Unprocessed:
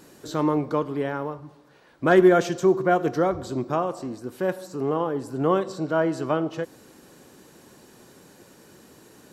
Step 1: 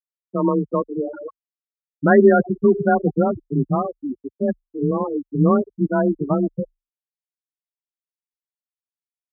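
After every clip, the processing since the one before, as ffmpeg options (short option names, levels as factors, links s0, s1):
-af "afftfilt=real='re*gte(hypot(re,im),0.2)':imag='im*gte(hypot(re,im),0.2)':win_size=1024:overlap=0.75,asubboost=boost=6:cutoff=180,afreqshift=26,volume=1.68"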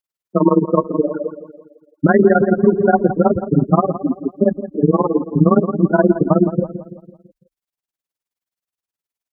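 -filter_complex "[0:a]tremolo=f=19:d=0.93,asplit=2[s0][s1];[s1]adelay=167,lowpass=f=1600:p=1,volume=0.237,asplit=2[s2][s3];[s3]adelay=167,lowpass=f=1600:p=1,volume=0.49,asplit=2[s4][s5];[s5]adelay=167,lowpass=f=1600:p=1,volume=0.49,asplit=2[s6][s7];[s7]adelay=167,lowpass=f=1600:p=1,volume=0.49,asplit=2[s8][s9];[s9]adelay=167,lowpass=f=1600:p=1,volume=0.49[s10];[s0][s2][s4][s6][s8][s10]amix=inputs=6:normalize=0,alimiter=level_in=3.76:limit=0.891:release=50:level=0:latency=1,volume=0.891"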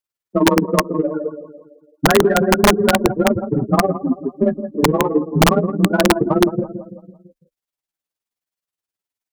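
-filter_complex "[0:a]asplit=2[s0][s1];[s1]asoftclip=type=tanh:threshold=0.188,volume=0.299[s2];[s0][s2]amix=inputs=2:normalize=0,flanger=delay=8.5:depth=5.3:regen=12:speed=0.31:shape=sinusoidal,aeval=exprs='(mod(1.88*val(0)+1,2)-1)/1.88':c=same,volume=1.12"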